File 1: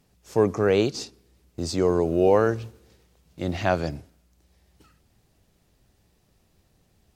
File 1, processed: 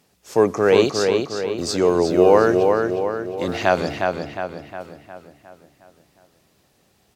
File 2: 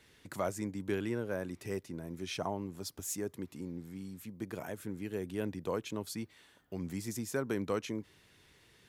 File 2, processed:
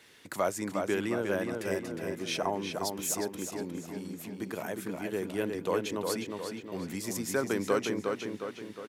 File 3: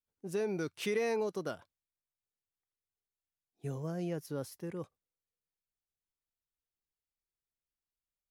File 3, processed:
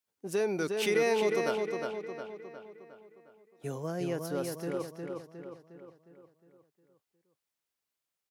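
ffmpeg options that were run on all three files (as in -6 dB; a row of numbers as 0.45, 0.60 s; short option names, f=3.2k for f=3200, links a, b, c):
-filter_complex "[0:a]highpass=f=330:p=1,asplit=2[a][b];[b]adelay=359,lowpass=f=4.5k:p=1,volume=-4dB,asplit=2[c][d];[d]adelay=359,lowpass=f=4.5k:p=1,volume=0.52,asplit=2[e][f];[f]adelay=359,lowpass=f=4.5k:p=1,volume=0.52,asplit=2[g][h];[h]adelay=359,lowpass=f=4.5k:p=1,volume=0.52,asplit=2[i][j];[j]adelay=359,lowpass=f=4.5k:p=1,volume=0.52,asplit=2[k][l];[l]adelay=359,lowpass=f=4.5k:p=1,volume=0.52,asplit=2[m][n];[n]adelay=359,lowpass=f=4.5k:p=1,volume=0.52[o];[a][c][e][g][i][k][m][o]amix=inputs=8:normalize=0,volume=6.5dB"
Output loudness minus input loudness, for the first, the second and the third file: +4.5, +5.5, +4.5 LU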